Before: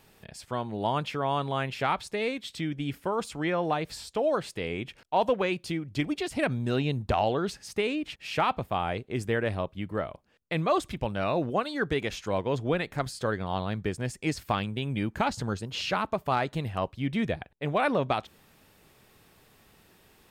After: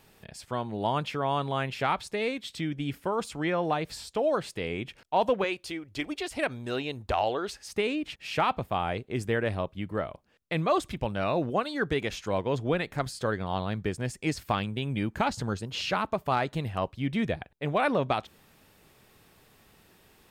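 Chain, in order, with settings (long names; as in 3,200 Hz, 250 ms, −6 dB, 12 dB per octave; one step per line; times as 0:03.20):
0:05.44–0:07.72: parametric band 160 Hz −15 dB 1.2 octaves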